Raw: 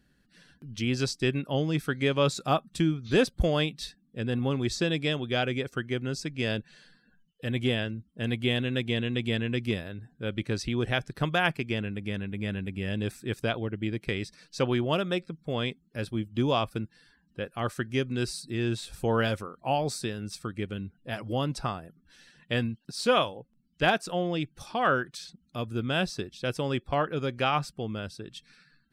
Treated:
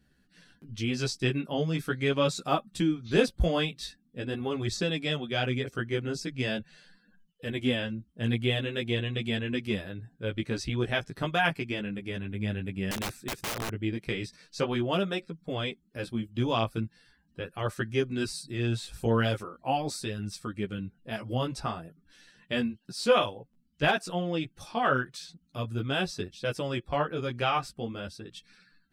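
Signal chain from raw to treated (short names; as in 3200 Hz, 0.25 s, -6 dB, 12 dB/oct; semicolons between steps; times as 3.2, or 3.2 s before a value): chorus voices 2, 0.42 Hz, delay 14 ms, depth 4.2 ms; 12.91–13.7 wrapped overs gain 30 dB; gain +2 dB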